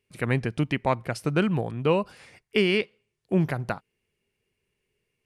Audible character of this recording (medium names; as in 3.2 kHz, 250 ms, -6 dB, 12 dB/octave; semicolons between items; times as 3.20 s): noise floor -80 dBFS; spectral tilt -5.0 dB/octave